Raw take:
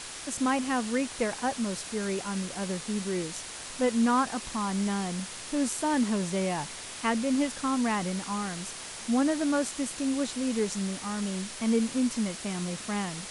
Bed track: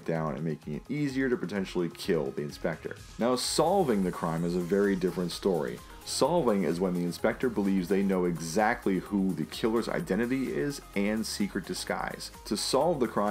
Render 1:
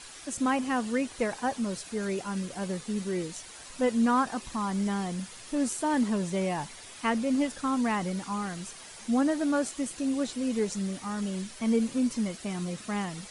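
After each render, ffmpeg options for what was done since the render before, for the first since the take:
-af "afftdn=nr=9:nf=-41"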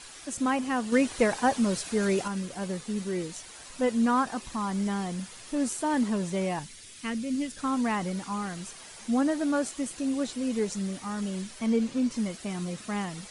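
-filter_complex "[0:a]asettb=1/sr,asplit=3[a][b][c];[a]atrim=end=0.924[d];[b]atrim=start=0.92:end=2.28,asetpts=PTS-STARTPTS,afade=t=in:d=0.004:c=qsin,afade=t=out:st=1.356:d=0.004:c=qsin,acontrast=40[e];[c]atrim=start=2.276[f];[d][e]acrossfade=d=0.004:c1=hsin:c2=qsin[g];[g][f]acrossfade=d=0.004:c1=qsin:c2=hsin,asettb=1/sr,asplit=3[h][i][j];[h]atrim=end=6.594[k];[i]atrim=start=6.59:end=7.58,asetpts=PTS-STARTPTS,afade=t=in:d=0.004:c=qsin,afade=t=out:st=0.986:d=0.004:c=qsin,equalizer=f=830:t=o:w=1.7:g=-14.5[l];[j]atrim=start=7.576[m];[k][l]acrossfade=d=0.004:c1=hsin:c2=qsin[n];[n][m]acrossfade=d=0.004:c1=qsin:c2=hsin,asettb=1/sr,asplit=3[o][p][q];[o]atrim=end=11.664[r];[p]atrim=start=11.66:end=12.14,asetpts=PTS-STARTPTS,afade=t=in:d=0.004:c=qsin,afade=t=out:st=0.476:d=0.004:c=qsin,lowpass=7k[s];[q]atrim=start=12.136[t];[r][s]acrossfade=d=0.004:c1=hsin:c2=qsin[u];[u][t]acrossfade=d=0.004:c1=qsin:c2=hsin"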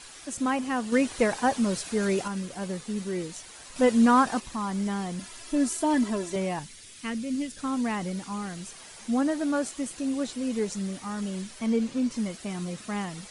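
-filter_complex "[0:a]asettb=1/sr,asplit=3[a][b][c];[a]atrim=end=5.194[d];[b]atrim=start=5.19:end=6.36,asetpts=PTS-STARTPTS,afade=t=in:d=0.004:c=qsin,afade=t=out:st=1.166:d=0.004:c=qsin,aecho=1:1:3:0.76,atrim=end_sample=51597[e];[c]atrim=start=6.356[f];[d][e]acrossfade=d=0.004:c1=hsin:c2=qsin[g];[g][f]acrossfade=d=0.004:c1=qsin:c2=hsin,asettb=1/sr,asplit=3[h][i][j];[h]atrim=end=7.424[k];[i]atrim=start=7.42:end=8.72,asetpts=PTS-STARTPTS,afade=t=in:d=0.004:c=qsin,afade=t=out:st=1.296:d=0.004:c=qsin,equalizer=f=1.1k:w=1:g=-3.5[l];[j]atrim=start=8.716[m];[k][l]acrossfade=d=0.004:c1=hsin:c2=qsin[n];[n][m]acrossfade=d=0.004:c1=qsin:c2=hsin,asplit=3[o][p][q];[o]atrim=end=3.762[r];[p]atrim=start=3.758:end=4.402,asetpts=PTS-STARTPTS,volume=5dB[s];[q]atrim=start=4.398[t];[r][s]acrossfade=d=0.004:c1=hsin:c2=hsin[u];[u][t]acrossfade=d=0.004:c1=hsin:c2=hsin"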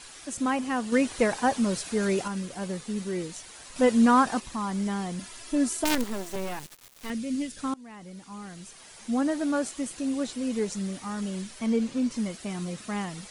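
-filter_complex "[0:a]asettb=1/sr,asplit=3[a][b][c];[a]atrim=end=5.844[d];[b]atrim=start=5.84:end=7.1,asetpts=PTS-STARTPTS,afade=t=in:d=0.004:c=qsin,afade=t=out:st=1.256:d=0.004:c=qsin,acrusher=bits=4:dc=4:mix=0:aa=0.000001[e];[c]atrim=start=7.096[f];[d][e]acrossfade=d=0.004:c1=hsin:c2=qsin[g];[g][f]acrossfade=d=0.004:c1=qsin:c2=hsin,asplit=2[h][i];[h]atrim=end=7.74,asetpts=PTS-STARTPTS,afade=t=out:st=7.736:d=0.004:c=hsin:silence=0.0630957[j];[i]atrim=start=7.74,asetpts=PTS-STARTPTS,afade=t=in:d=1.61:silence=0.0630957[k];[j][k]concat=n=2:v=0:a=1"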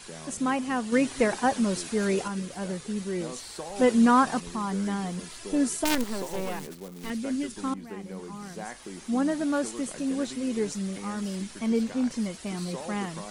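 -filter_complex "[1:a]volume=-13.5dB[a];[0:a][a]amix=inputs=2:normalize=0"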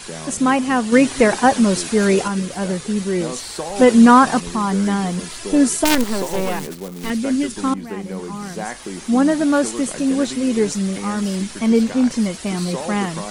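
-af "volume=10.5dB,alimiter=limit=-2dB:level=0:latency=1"

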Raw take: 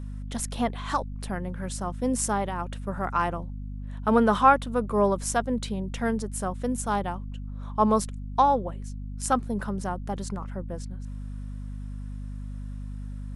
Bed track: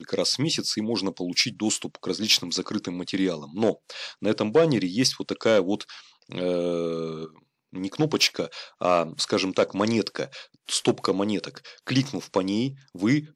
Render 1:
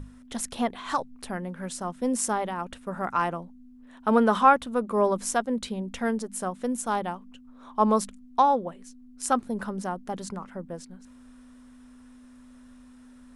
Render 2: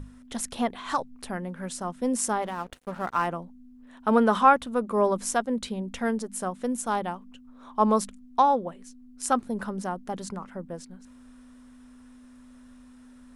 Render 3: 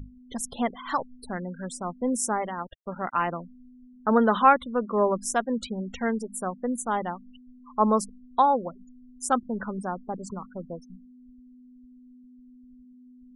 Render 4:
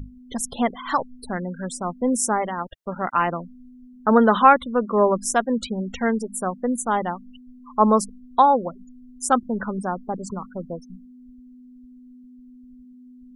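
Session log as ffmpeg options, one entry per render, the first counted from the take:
-af "bandreject=f=50:t=h:w=6,bandreject=f=100:t=h:w=6,bandreject=f=150:t=h:w=6,bandreject=f=200:t=h:w=6"
-filter_complex "[0:a]asettb=1/sr,asplit=3[a][b][c];[a]atrim=end=2.424[d];[b]atrim=start=2.42:end=3.27,asetpts=PTS-STARTPTS,afade=t=in:d=0.004:c=qsin,afade=t=out:st=0.846:d=0.004:c=qsin,aeval=exprs='sgn(val(0))*max(abs(val(0))-0.00531,0)':c=same[e];[c]atrim=start=3.266[f];[d][e]acrossfade=d=0.004:c1=hsin:c2=qsin[g];[g][f]acrossfade=d=0.004:c1=qsin:c2=hsin"
-af "afftfilt=real='re*gte(hypot(re,im),0.0178)':imag='im*gte(hypot(re,im),0.0178)':win_size=1024:overlap=0.75,adynamicequalizer=threshold=0.00501:dfrequency=2100:dqfactor=3.2:tfrequency=2100:tqfactor=3.2:attack=5:release=100:ratio=0.375:range=2:mode=boostabove:tftype=bell"
-af "volume=5dB,alimiter=limit=-2dB:level=0:latency=1"

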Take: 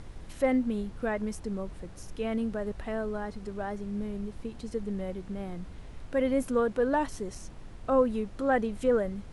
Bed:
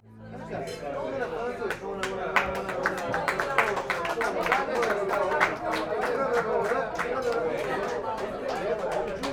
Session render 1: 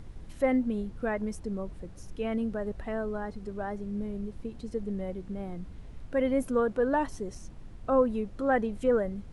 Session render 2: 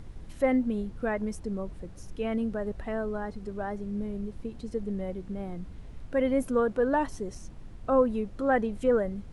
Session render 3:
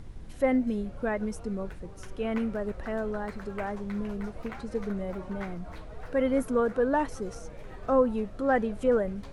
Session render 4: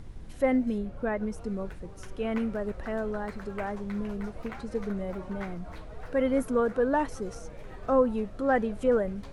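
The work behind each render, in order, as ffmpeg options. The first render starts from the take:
-af "afftdn=nr=6:nf=-46"
-af "volume=1dB"
-filter_complex "[1:a]volume=-19.5dB[a];[0:a][a]amix=inputs=2:normalize=0"
-filter_complex "[0:a]asettb=1/sr,asplit=3[a][b][c];[a]atrim=end=0.784[d];[b]atrim=start=0.78:end=1.38,asetpts=PTS-STARTPTS,afade=t=in:d=0.004:c=qsin,afade=t=out:st=0.596:d=0.004:c=qsin,highshelf=f=3.4k:g=-6.5[e];[c]atrim=start=1.376[f];[d][e]acrossfade=d=0.004:c1=hsin:c2=qsin[g];[g][f]acrossfade=d=0.004:c1=qsin:c2=hsin"

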